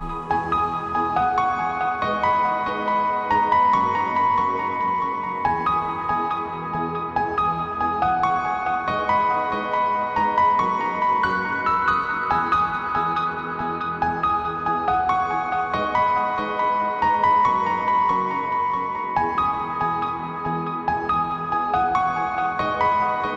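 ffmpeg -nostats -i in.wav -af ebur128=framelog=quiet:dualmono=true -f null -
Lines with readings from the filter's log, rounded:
Integrated loudness:
  I:         -18.7 LUFS
  Threshold: -28.7 LUFS
Loudness range:
  LRA:         2.8 LU
  Threshold: -38.7 LUFS
  LRA low:   -20.3 LUFS
  LRA high:  -17.5 LUFS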